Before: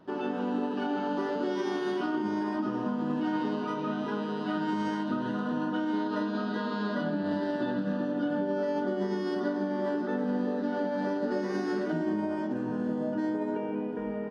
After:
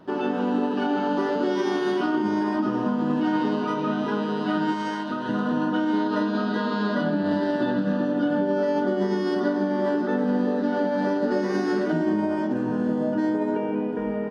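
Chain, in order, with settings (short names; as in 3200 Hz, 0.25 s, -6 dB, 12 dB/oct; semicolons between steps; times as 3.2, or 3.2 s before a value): 4.72–5.29 low shelf 380 Hz -9.5 dB; gain +6.5 dB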